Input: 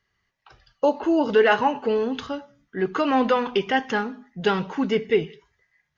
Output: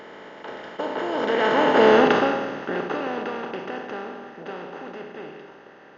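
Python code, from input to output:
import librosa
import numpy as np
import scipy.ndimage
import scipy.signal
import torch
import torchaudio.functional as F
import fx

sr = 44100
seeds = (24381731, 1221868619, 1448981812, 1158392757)

y = fx.bin_compress(x, sr, power=0.2)
y = fx.doppler_pass(y, sr, speed_mps=16, closest_m=3.6, pass_at_s=1.93)
y = F.gain(torch.from_numpy(y), -1.5).numpy()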